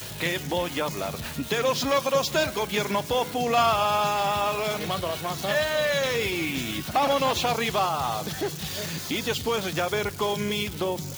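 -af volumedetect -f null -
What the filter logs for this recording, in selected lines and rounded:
mean_volume: -26.2 dB
max_volume: -11.7 dB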